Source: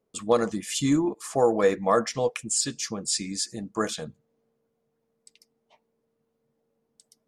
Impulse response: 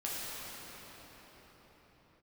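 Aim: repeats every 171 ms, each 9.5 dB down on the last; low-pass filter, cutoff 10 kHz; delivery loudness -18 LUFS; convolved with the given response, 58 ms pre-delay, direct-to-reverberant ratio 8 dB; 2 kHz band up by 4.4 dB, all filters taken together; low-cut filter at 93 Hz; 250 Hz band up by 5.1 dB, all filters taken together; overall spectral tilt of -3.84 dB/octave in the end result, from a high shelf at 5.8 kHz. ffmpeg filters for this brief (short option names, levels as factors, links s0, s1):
-filter_complex "[0:a]highpass=93,lowpass=10000,equalizer=f=250:t=o:g=6.5,equalizer=f=2000:t=o:g=5,highshelf=f=5800:g=3.5,aecho=1:1:171|342|513|684:0.335|0.111|0.0365|0.012,asplit=2[s0][s1];[1:a]atrim=start_sample=2205,adelay=58[s2];[s1][s2]afir=irnorm=-1:irlink=0,volume=0.224[s3];[s0][s3]amix=inputs=2:normalize=0,volume=1.58"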